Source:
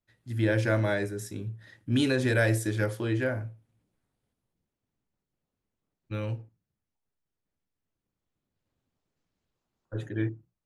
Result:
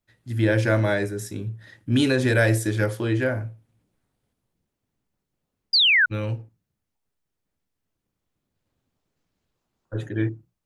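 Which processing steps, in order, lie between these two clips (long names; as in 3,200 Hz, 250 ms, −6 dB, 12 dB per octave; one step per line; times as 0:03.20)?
sound drawn into the spectrogram fall, 0:05.73–0:06.06, 1,400–5,000 Hz −22 dBFS
level +5 dB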